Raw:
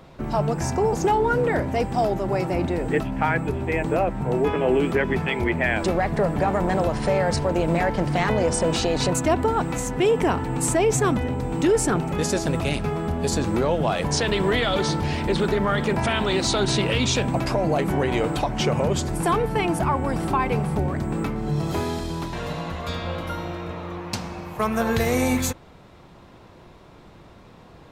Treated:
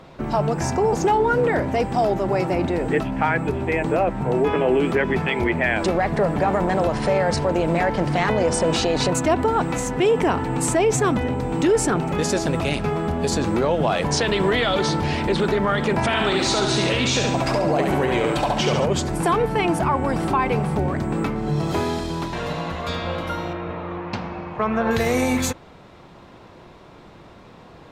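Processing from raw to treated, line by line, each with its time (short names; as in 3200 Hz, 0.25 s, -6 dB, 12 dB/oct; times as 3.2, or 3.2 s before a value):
16.06–18.86 thinning echo 70 ms, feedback 51%, level -3 dB
23.53–24.91 LPF 2700 Hz
whole clip: high shelf 10000 Hz -9.5 dB; limiter -14.5 dBFS; low shelf 130 Hz -6 dB; gain +4 dB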